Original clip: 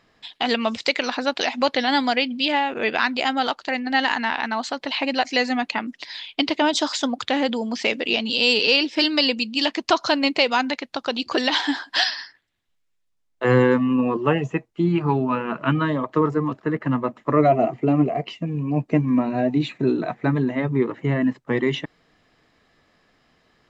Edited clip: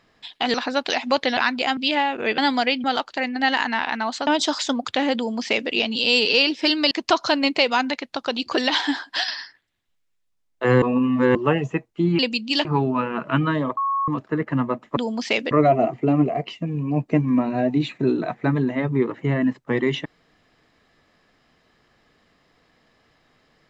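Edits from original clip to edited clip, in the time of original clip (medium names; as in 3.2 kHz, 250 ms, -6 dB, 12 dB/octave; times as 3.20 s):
0.54–1.05 s: delete
1.88–2.34 s: swap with 2.95–3.35 s
4.78–6.61 s: delete
7.51–8.05 s: copy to 17.31 s
9.25–9.71 s: move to 14.99 s
11.79–12.08 s: fade out, to -6.5 dB
13.62–14.15 s: reverse
16.11–16.42 s: bleep 1.1 kHz -19.5 dBFS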